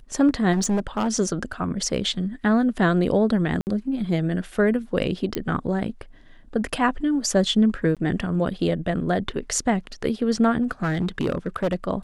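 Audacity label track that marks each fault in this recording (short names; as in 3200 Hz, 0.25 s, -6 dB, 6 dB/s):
0.520000	1.140000	clipped -18.5 dBFS
3.610000	3.670000	gap 59 ms
5.350000	5.350000	pop -10 dBFS
7.950000	7.970000	gap 17 ms
10.620000	11.750000	clipped -18 dBFS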